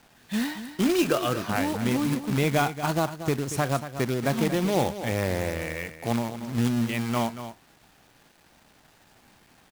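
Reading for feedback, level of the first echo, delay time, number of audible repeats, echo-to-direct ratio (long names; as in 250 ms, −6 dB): repeats not evenly spaced, −11.5 dB, 233 ms, 1, −11.5 dB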